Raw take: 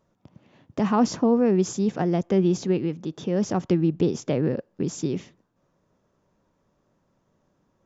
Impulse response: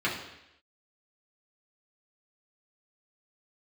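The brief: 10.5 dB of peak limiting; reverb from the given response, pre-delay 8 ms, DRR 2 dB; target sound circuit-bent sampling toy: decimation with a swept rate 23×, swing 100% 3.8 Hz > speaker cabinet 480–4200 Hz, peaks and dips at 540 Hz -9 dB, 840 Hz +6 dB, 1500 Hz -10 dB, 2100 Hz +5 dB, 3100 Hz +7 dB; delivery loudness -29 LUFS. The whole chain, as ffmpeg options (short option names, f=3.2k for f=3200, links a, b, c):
-filter_complex "[0:a]alimiter=limit=-20.5dB:level=0:latency=1,asplit=2[a][b];[1:a]atrim=start_sample=2205,adelay=8[c];[b][c]afir=irnorm=-1:irlink=0,volume=-13dB[d];[a][d]amix=inputs=2:normalize=0,acrusher=samples=23:mix=1:aa=0.000001:lfo=1:lforange=23:lforate=3.8,highpass=480,equalizer=f=540:t=q:w=4:g=-9,equalizer=f=840:t=q:w=4:g=6,equalizer=f=1.5k:t=q:w=4:g=-10,equalizer=f=2.1k:t=q:w=4:g=5,equalizer=f=3.1k:t=q:w=4:g=7,lowpass=f=4.2k:w=0.5412,lowpass=f=4.2k:w=1.3066,volume=3.5dB"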